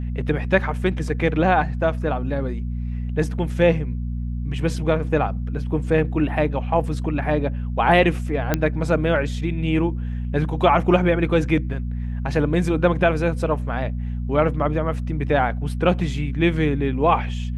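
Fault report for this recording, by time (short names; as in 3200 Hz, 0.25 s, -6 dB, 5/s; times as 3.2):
hum 60 Hz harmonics 4 -26 dBFS
8.54 pop -5 dBFS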